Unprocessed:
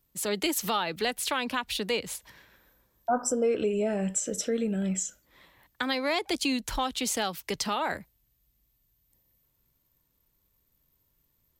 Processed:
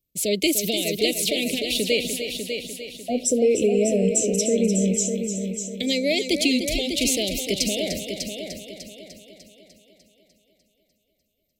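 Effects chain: gate -58 dBFS, range -15 dB; Chebyshev band-stop 630–2200 Hz, order 4; multi-head delay 299 ms, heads first and second, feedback 46%, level -9 dB; trim +7.5 dB

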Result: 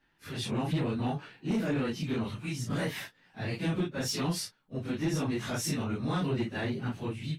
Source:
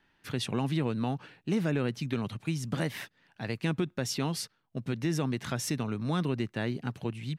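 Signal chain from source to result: phase randomisation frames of 100 ms; saturation -24 dBFS, distortion -17 dB; level rider gain up to 4 dB; trim -2.5 dB

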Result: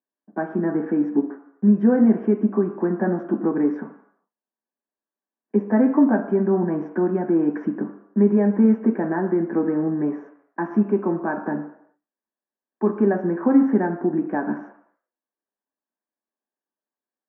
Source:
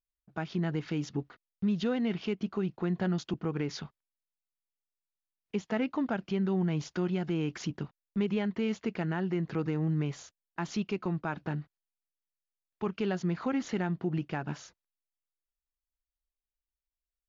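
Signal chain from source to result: elliptic band-pass 240–1800 Hz, stop band 40 dB; reverberation RT60 0.75 s, pre-delay 3 ms, DRR 1.5 dB

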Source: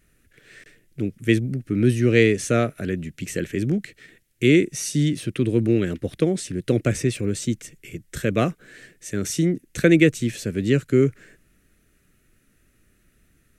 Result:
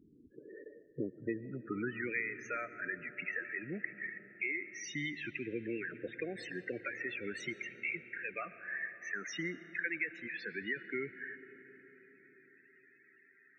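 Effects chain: band-pass sweep 280 Hz -> 1.9 kHz, 0.18–2.13 s; compression 5:1, threshold -45 dBFS, peak gain reduction 22 dB; loudest bins only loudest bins 16; 7.44–8.34 s: rippled EQ curve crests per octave 0.74, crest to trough 12 dB; on a send: reverberation RT60 5.3 s, pre-delay 70 ms, DRR 13 dB; on the sum: trim +10.5 dB

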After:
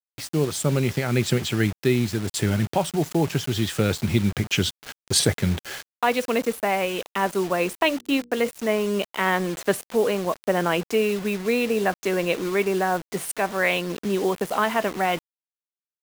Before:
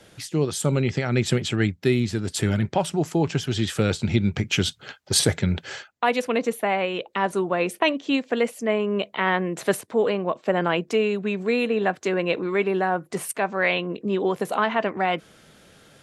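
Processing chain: bit crusher 6-bit; 7.80–8.49 s: hum notches 60/120/180/240/300/360/420/480 Hz

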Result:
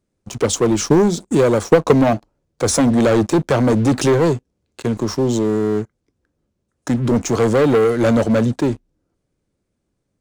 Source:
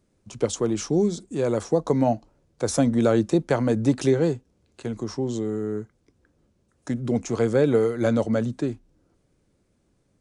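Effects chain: waveshaping leveller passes 3; 0.60–2.07 s: transient shaper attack +7 dB, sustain -2 dB

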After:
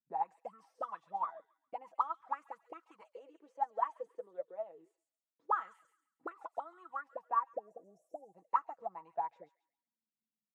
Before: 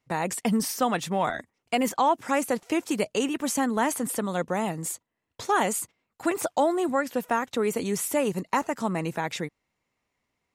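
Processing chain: 3.01–5.45 s: frequency weighting A; 7.52–8.33 s: spectral selection erased 800–5200 Hz; peaking EQ 630 Hz -2.5 dB 0.48 oct; comb 6.1 ms, depth 58%; auto-wah 220–1300 Hz, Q 18, up, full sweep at -20 dBFS; feedback echo behind a high-pass 136 ms, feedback 34%, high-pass 3.6 kHz, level -4 dB; upward expansion 1.5:1, over -46 dBFS; trim +4 dB

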